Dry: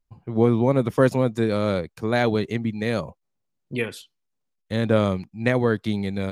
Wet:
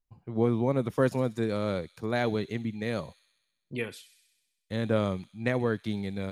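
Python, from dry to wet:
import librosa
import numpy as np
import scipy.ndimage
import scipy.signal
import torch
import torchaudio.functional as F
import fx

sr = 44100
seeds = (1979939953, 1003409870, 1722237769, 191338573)

y = fx.echo_wet_highpass(x, sr, ms=64, feedback_pct=70, hz=4700.0, wet_db=-9.5)
y = F.gain(torch.from_numpy(y), -7.0).numpy()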